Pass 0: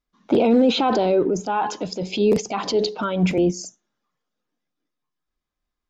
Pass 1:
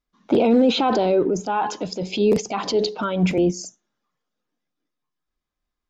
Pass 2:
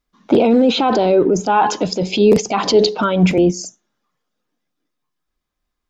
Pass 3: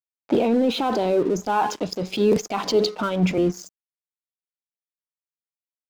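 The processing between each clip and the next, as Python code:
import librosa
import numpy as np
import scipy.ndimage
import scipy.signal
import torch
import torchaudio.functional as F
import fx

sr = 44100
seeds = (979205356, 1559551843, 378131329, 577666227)

y1 = x
y2 = fx.rider(y1, sr, range_db=3, speed_s=0.5)
y2 = y2 * 10.0 ** (6.0 / 20.0)
y3 = np.sign(y2) * np.maximum(np.abs(y2) - 10.0 ** (-32.5 / 20.0), 0.0)
y3 = y3 * 10.0 ** (-6.5 / 20.0)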